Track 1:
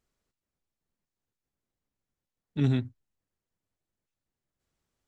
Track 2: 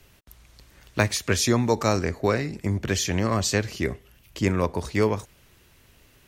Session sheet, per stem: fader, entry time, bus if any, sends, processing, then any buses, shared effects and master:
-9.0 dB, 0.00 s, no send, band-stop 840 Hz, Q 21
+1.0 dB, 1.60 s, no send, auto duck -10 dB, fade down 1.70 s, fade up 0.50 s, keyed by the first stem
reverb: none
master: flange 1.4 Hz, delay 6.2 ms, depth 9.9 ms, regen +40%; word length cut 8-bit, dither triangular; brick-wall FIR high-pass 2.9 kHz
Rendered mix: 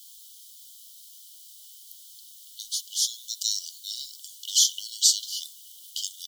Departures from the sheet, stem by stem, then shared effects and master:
stem 2 +1.0 dB -> +8.5 dB; master: missing flange 1.4 Hz, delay 6.2 ms, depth 9.9 ms, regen +40%

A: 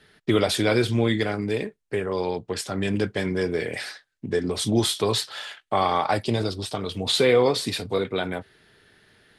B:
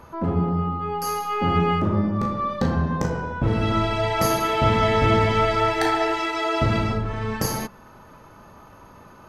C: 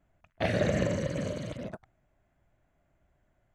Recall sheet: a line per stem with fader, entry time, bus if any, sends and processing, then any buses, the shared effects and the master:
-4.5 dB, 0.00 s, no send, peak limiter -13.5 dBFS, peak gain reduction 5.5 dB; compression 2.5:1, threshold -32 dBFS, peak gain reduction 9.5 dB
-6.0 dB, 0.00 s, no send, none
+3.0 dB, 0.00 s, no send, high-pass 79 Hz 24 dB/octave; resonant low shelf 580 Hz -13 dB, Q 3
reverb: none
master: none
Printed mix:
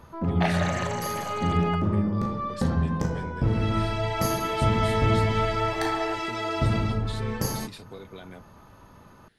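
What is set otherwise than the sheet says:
stem A -4.5 dB -> -11.0 dB; master: extra tone controls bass +5 dB, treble +2 dB

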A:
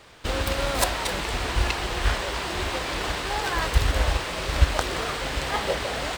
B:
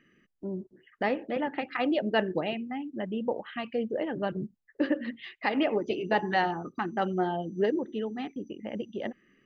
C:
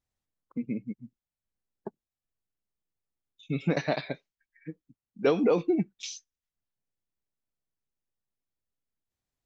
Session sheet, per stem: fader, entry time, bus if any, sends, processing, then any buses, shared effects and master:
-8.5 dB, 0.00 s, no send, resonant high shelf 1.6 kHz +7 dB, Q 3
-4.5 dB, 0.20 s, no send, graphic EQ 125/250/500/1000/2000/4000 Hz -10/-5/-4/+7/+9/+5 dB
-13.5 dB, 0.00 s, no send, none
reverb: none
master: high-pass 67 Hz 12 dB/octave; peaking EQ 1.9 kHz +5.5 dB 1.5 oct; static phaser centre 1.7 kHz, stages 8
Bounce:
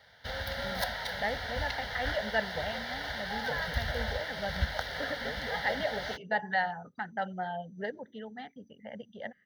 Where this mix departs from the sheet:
stem A: missing resonant high shelf 1.6 kHz +7 dB, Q 3; stem B: missing graphic EQ 125/250/500/1000/2000/4000 Hz -10/-5/-4/+7/+9/+5 dB

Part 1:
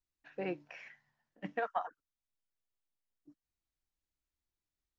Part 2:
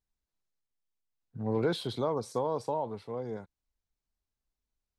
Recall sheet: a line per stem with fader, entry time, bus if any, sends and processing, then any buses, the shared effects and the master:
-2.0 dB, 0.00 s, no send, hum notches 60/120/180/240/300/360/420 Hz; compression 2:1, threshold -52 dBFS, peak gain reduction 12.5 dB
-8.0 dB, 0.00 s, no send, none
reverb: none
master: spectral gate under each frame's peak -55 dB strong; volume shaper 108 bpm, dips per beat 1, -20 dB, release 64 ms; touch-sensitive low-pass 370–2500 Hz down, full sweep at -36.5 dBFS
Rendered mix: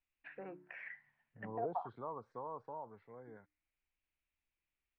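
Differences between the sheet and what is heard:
stem 2 -8.0 dB -> -18.0 dB; master: missing volume shaper 108 bpm, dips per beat 1, -20 dB, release 64 ms

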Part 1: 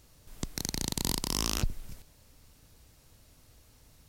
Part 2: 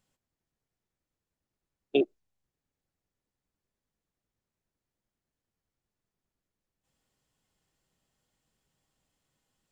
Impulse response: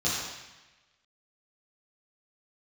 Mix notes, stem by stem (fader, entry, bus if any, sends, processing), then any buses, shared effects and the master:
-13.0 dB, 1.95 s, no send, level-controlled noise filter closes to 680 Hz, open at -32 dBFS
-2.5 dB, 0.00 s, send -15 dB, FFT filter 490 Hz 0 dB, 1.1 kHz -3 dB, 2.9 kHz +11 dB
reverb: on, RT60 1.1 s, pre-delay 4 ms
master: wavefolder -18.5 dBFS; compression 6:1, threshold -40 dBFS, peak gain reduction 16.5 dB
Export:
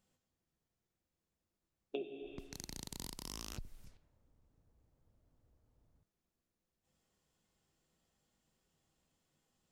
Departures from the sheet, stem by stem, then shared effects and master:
stem 2: missing FFT filter 490 Hz 0 dB, 1.1 kHz -3 dB, 2.9 kHz +11 dB; master: missing wavefolder -18.5 dBFS

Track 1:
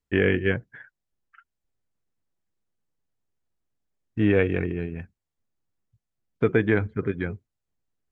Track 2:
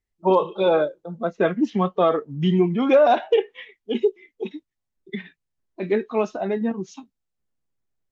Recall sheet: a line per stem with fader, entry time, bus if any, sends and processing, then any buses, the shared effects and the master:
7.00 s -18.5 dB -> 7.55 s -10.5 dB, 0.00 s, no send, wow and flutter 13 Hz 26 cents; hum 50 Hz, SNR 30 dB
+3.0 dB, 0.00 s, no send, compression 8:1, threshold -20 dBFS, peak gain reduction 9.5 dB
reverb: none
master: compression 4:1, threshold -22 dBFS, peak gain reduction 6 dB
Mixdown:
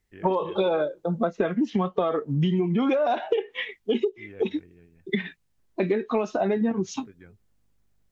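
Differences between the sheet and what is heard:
stem 1 -18.5 dB -> -24.5 dB; stem 2 +3.0 dB -> +9.5 dB

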